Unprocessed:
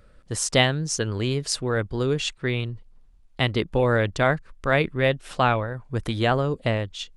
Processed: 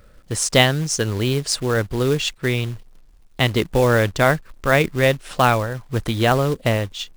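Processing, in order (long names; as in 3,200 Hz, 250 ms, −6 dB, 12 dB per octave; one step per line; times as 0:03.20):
floating-point word with a short mantissa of 2 bits
level +4.5 dB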